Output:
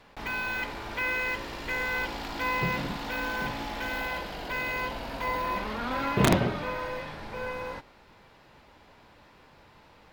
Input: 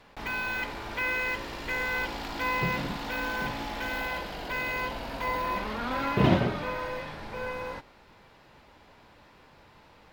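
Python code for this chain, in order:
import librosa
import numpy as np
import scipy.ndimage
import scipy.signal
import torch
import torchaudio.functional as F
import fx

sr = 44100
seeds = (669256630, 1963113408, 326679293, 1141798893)

y = (np.mod(10.0 ** (11.5 / 20.0) * x + 1.0, 2.0) - 1.0) / 10.0 ** (11.5 / 20.0)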